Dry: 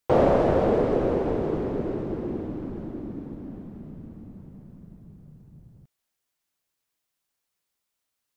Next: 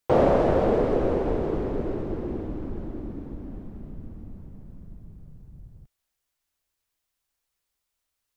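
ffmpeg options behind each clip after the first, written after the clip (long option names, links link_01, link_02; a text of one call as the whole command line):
ffmpeg -i in.wav -af "asubboost=boost=4.5:cutoff=76" out.wav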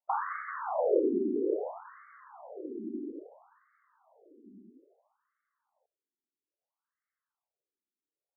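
ffmpeg -i in.wav -af "afftfilt=real='re*between(b*sr/1024,280*pow(1600/280,0.5+0.5*sin(2*PI*0.6*pts/sr))/1.41,280*pow(1600/280,0.5+0.5*sin(2*PI*0.6*pts/sr))*1.41)':imag='im*between(b*sr/1024,280*pow(1600/280,0.5+0.5*sin(2*PI*0.6*pts/sr))/1.41,280*pow(1600/280,0.5+0.5*sin(2*PI*0.6*pts/sr))*1.41)':win_size=1024:overlap=0.75" out.wav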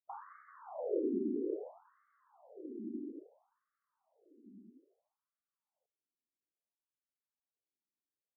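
ffmpeg -i in.wav -af "bandpass=frequency=210:width_type=q:width=1.2:csg=0,volume=-2dB" out.wav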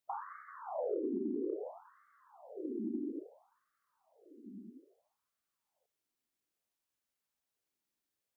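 ffmpeg -i in.wav -af "acompressor=threshold=-40dB:ratio=5,volume=6.5dB" out.wav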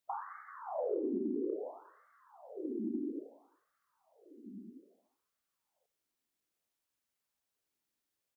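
ffmpeg -i in.wav -af "aecho=1:1:91|182|273|364:0.0794|0.0461|0.0267|0.0155,volume=1dB" out.wav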